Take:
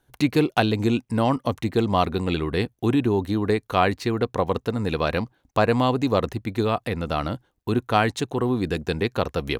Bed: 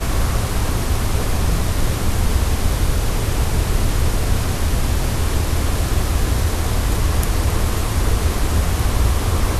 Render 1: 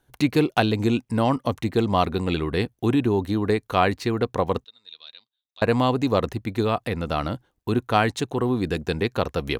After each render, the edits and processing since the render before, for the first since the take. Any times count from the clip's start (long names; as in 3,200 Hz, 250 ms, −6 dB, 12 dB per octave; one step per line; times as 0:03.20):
0:04.64–0:05.62: resonant band-pass 3,700 Hz, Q 13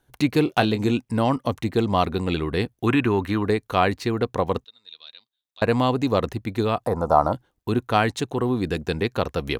0:00.44–0:00.91: double-tracking delay 24 ms −10.5 dB
0:02.87–0:03.43: flat-topped bell 1,700 Hz +10.5 dB
0:06.86–0:07.33: drawn EQ curve 290 Hz 0 dB, 950 Hz +15 dB, 2,800 Hz −24 dB, 5,600 Hz +1 dB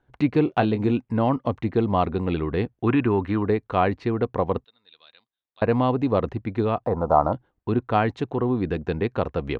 low-pass filter 2,100 Hz 12 dB per octave
dynamic equaliser 1,600 Hz, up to −3 dB, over −36 dBFS, Q 1.3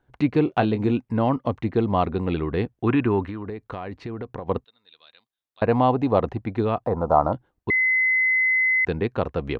0:03.23–0:04.49: downward compressor 12 to 1, threshold −28 dBFS
0:05.68–0:06.57: parametric band 780 Hz +6.5 dB 0.65 octaves
0:07.70–0:08.85: beep over 2,040 Hz −17 dBFS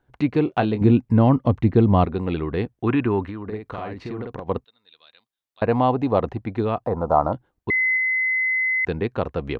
0:00.81–0:02.05: low-shelf EQ 280 Hz +11 dB
0:03.44–0:04.40: double-tracking delay 47 ms −2 dB
0:07.97–0:08.84: high-frequency loss of the air 160 metres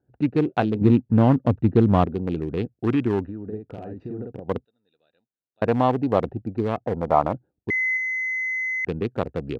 adaptive Wiener filter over 41 samples
high-pass filter 90 Hz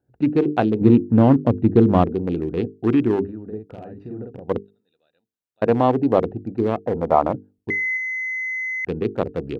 mains-hum notches 50/100/150/200/250/300/350/400/450 Hz
dynamic equaliser 350 Hz, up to +6 dB, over −31 dBFS, Q 0.81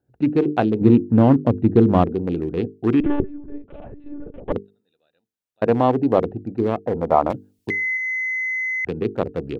0:03.00–0:04.52: one-pitch LPC vocoder at 8 kHz 290 Hz
0:07.30–0:09.01: multiband upward and downward compressor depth 70%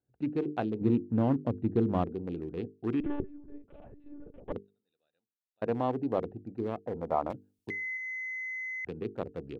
level −13 dB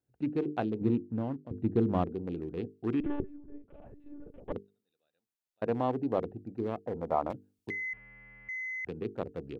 0:00.73–0:01.51: fade out, to −17 dB
0:03.36–0:03.86: high-frequency loss of the air 250 metres
0:07.93–0:08.49: linear delta modulator 16 kbit/s, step −56.5 dBFS